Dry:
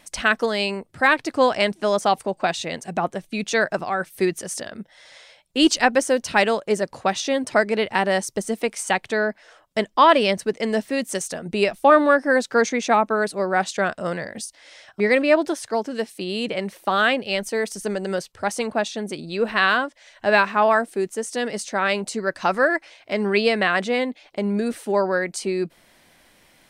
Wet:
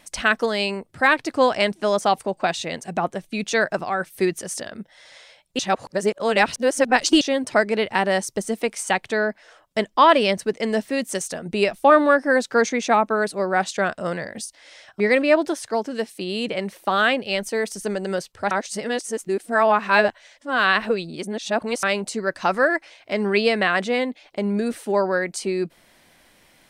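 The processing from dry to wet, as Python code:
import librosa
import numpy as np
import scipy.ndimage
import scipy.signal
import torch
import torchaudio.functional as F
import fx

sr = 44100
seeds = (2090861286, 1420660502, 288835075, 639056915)

y = fx.edit(x, sr, fx.reverse_span(start_s=5.59, length_s=1.62),
    fx.reverse_span(start_s=18.51, length_s=3.32), tone=tone)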